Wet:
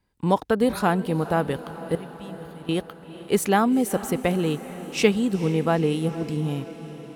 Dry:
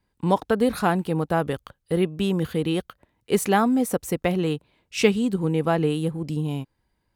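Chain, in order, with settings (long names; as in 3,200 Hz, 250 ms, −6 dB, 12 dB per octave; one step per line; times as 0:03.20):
0:01.95–0:02.69: guitar amp tone stack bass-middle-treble 6-0-2
feedback delay with all-pass diffusion 451 ms, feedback 65%, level −15 dB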